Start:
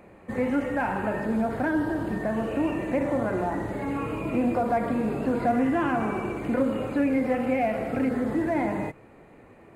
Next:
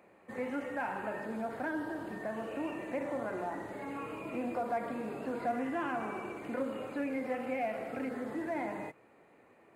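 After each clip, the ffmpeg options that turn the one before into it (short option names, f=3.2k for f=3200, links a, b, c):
-af "highpass=f=410:p=1,volume=-7.5dB"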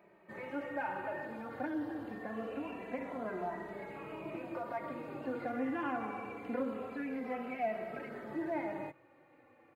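-filter_complex "[0:a]equalizer=f=8.5k:t=o:w=1.1:g=-11.5,asplit=2[a][b];[b]adelay=2.7,afreqshift=-0.25[c];[a][c]amix=inputs=2:normalize=1,volume=1.5dB"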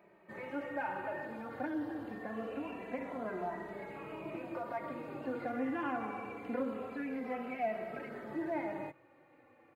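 -af anull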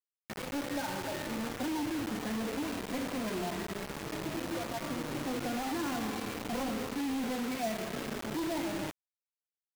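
-filter_complex "[0:a]acrossover=split=350|910[a][b][c];[a]aeval=exprs='0.0251*sin(PI/2*2.82*val(0)/0.0251)':c=same[d];[d][b][c]amix=inputs=3:normalize=0,acrusher=bits=5:mix=0:aa=0.000001,volume=-2dB"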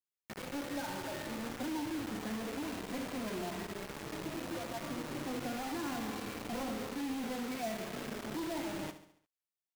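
-af "aecho=1:1:70|140|210|280|350:0.251|0.126|0.0628|0.0314|0.0157,volume=-4dB"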